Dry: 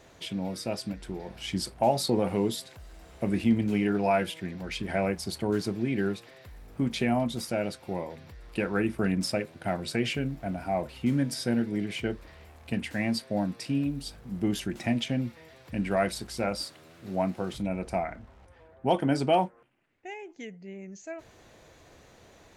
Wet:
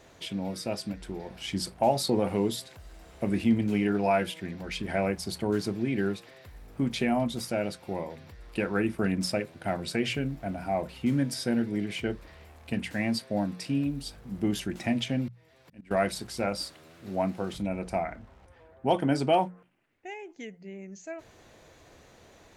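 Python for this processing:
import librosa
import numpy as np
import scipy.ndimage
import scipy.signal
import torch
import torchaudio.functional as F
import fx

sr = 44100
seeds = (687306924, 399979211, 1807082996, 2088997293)

y = fx.auto_swell(x, sr, attack_ms=652.0, at=(15.28, 15.91))
y = fx.hum_notches(y, sr, base_hz=60, count=3)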